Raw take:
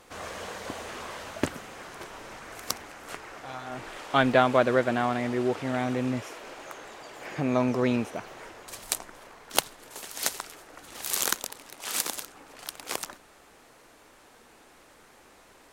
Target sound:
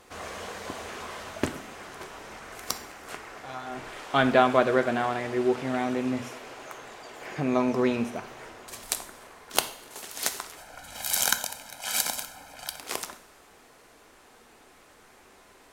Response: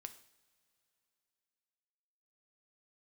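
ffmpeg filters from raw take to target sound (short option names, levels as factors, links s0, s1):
-filter_complex "[0:a]asettb=1/sr,asplit=3[s0][s1][s2];[s0]atrim=end=10.574[s3];[s1]atrim=start=10.57:end=12.79,asetpts=PTS-STARTPTS,afade=t=in:d=0.004:c=qsin,afade=t=out:st=2.216:d=0.004:c=qsin,aecho=1:1:1.3:0.91,atrim=end_sample=97902[s4];[s2]atrim=start=12.786[s5];[s3][s4]acrossfade=d=0.004:c1=hsin:c2=qsin[s6];[s6][s5]acrossfade=d=0.004:c1=qsin:c2=hsin[s7];[1:a]atrim=start_sample=2205[s8];[s7][s8]afir=irnorm=-1:irlink=0,volume=1.88"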